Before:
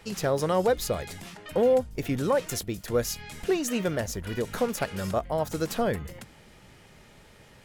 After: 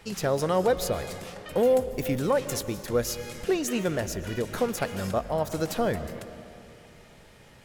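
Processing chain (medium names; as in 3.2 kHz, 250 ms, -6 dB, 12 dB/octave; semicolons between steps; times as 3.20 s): 1.55–2.18 s: treble shelf 6.7 kHz -> 12 kHz +11.5 dB; on a send: reverberation RT60 2.8 s, pre-delay 85 ms, DRR 12 dB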